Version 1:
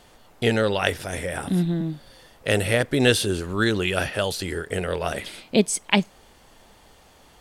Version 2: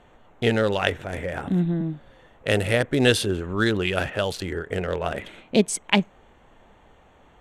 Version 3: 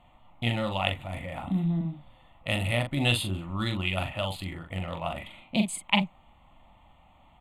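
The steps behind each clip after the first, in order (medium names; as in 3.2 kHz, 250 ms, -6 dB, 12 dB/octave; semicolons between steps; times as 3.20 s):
local Wiener filter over 9 samples; Bessel low-pass 12 kHz, order 2
static phaser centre 1.6 kHz, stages 6; doubling 42 ms -6 dB; trim -2.5 dB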